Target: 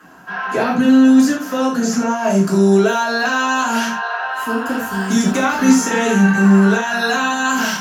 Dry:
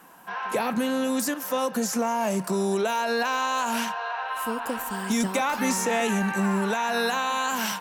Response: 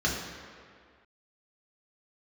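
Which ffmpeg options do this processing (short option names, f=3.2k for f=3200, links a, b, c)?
-filter_complex "[0:a]asetnsamples=n=441:p=0,asendcmd='2.29 highshelf g 3.5',highshelf=f=8.1k:g=-4.5[a];[1:a]atrim=start_sample=2205,atrim=end_sample=4410[b];[a][b]afir=irnorm=-1:irlink=0,volume=-2dB"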